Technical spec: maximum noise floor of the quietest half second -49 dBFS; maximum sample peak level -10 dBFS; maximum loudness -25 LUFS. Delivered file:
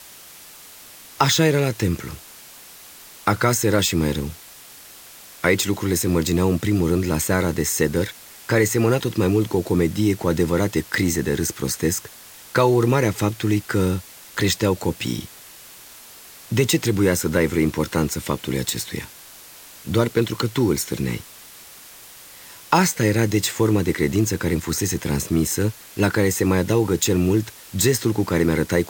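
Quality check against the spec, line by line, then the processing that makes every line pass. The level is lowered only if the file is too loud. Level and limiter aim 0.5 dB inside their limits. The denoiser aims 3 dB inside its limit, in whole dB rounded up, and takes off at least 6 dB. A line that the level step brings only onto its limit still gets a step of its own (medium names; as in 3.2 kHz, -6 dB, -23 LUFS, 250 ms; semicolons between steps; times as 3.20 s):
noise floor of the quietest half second -43 dBFS: fail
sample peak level -2.0 dBFS: fail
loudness -21.0 LUFS: fail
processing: noise reduction 6 dB, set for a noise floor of -43 dBFS; trim -4.5 dB; peak limiter -10.5 dBFS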